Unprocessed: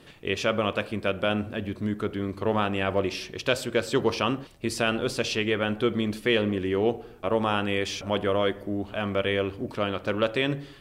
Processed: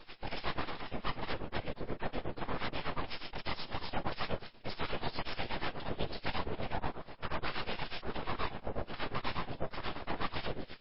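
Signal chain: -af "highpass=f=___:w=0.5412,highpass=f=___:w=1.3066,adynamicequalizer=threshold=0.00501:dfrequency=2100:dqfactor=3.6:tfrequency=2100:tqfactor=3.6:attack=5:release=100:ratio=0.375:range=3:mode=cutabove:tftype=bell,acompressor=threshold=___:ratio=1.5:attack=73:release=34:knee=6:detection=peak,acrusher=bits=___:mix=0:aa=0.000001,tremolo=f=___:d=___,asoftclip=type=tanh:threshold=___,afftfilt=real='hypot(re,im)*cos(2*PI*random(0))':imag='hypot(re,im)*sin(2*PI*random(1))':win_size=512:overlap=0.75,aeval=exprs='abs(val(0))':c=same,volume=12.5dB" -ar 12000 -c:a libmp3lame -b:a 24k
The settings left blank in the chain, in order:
43, 43, -47dB, 10, 8.3, 0.98, -33dB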